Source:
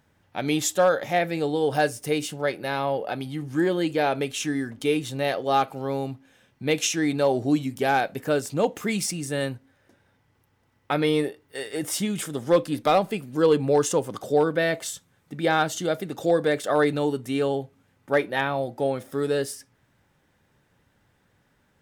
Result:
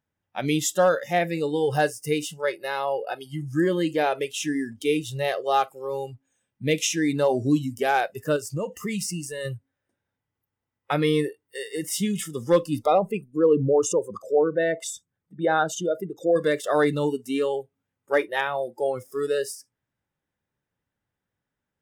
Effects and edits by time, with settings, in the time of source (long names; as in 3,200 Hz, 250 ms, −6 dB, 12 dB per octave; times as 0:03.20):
0:08.36–0:09.45: downward compressor 3 to 1, threshold −26 dBFS
0:12.86–0:16.36: spectral envelope exaggerated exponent 1.5
whole clip: noise reduction from a noise print of the clip's start 19 dB; notch filter 4,300 Hz, Q 11; dynamic equaliser 120 Hz, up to +5 dB, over −44 dBFS, Q 1.2